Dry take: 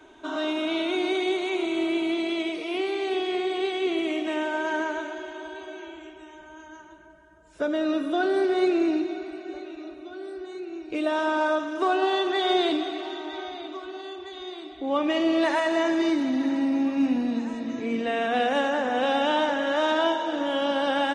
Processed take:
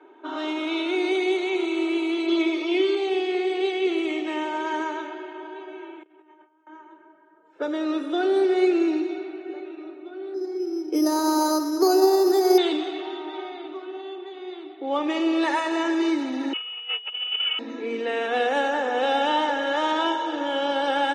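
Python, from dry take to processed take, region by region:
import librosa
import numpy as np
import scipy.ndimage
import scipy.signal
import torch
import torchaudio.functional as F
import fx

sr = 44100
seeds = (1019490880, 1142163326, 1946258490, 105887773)

y = fx.lowpass(x, sr, hz=6800.0, slope=24, at=(2.26, 2.95), fade=0.02)
y = fx.dmg_tone(y, sr, hz=3500.0, level_db=-51.0, at=(2.26, 2.95), fade=0.02)
y = fx.comb(y, sr, ms=3.2, depth=0.99, at=(2.26, 2.95), fade=0.02)
y = fx.chain(y, sr, fx.gate_hold(open_db=-35.0, close_db=-43.0, hold_ms=71.0, range_db=-21, attack_ms=1.4, release_ms=100.0),
    fx.comb_fb(f0_hz=300.0, decay_s=0.2, harmonics='all', damping=0.0, mix_pct=40),
    fx.over_compress(threshold_db=-53.0, ratio=-0.5), at=(6.03, 6.67))
y = fx.chain(y, sr, fx.lowpass(hz=1500.0, slope=12),
    fx.low_shelf_res(hz=190.0, db=-14.0, q=3.0),
    fx.resample_bad(factor=8, down='filtered', up='hold'), at=(10.34, 12.58))
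y = fx.chain(y, sr, fx.freq_invert(carrier_hz=3200),
    fx.cheby1_bandstop(low_hz=110.0, high_hz=440.0, order=4),
    fx.over_compress(threshold_db=-29.0, ratio=-0.5), at=(16.53, 17.59))
y = scipy.signal.sosfilt(scipy.signal.butter(6, 220.0, 'highpass', fs=sr, output='sos'), y)
y = fx.env_lowpass(y, sr, base_hz=1700.0, full_db=-20.5)
y = y + 0.53 * np.pad(y, (int(2.3 * sr / 1000.0), 0))[:len(y)]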